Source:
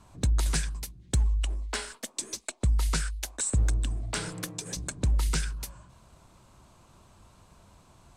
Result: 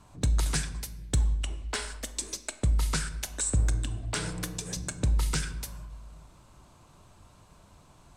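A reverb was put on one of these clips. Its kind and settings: simulated room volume 600 m³, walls mixed, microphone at 0.4 m

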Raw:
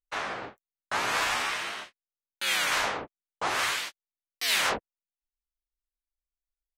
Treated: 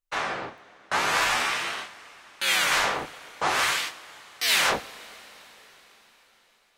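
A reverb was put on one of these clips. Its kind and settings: two-slope reverb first 0.35 s, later 4.8 s, from -18 dB, DRR 9.5 dB; trim +3.5 dB

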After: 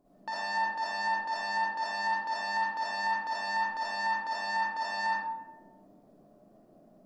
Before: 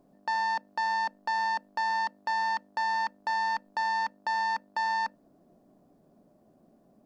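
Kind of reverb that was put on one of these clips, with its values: algorithmic reverb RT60 0.97 s, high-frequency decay 0.5×, pre-delay 20 ms, DRR -9.5 dB; trim -7 dB

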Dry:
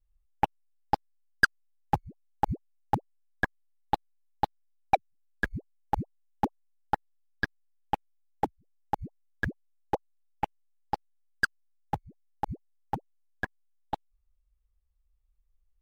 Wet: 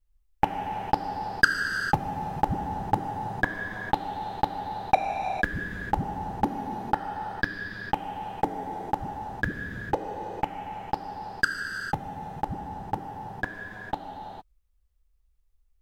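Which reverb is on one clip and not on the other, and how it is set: gated-style reverb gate 480 ms flat, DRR 1.5 dB; trim +2.5 dB

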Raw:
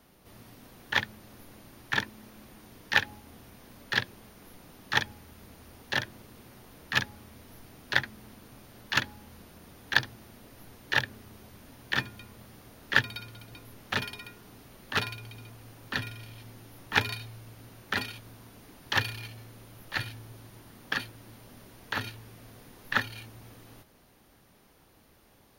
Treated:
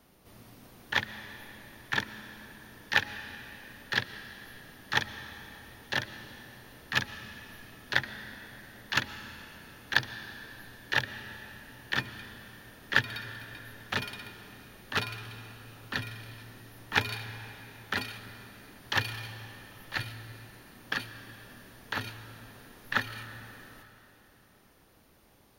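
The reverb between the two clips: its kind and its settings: algorithmic reverb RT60 3.4 s, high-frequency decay 0.9×, pre-delay 80 ms, DRR 11.5 dB; trim -1.5 dB

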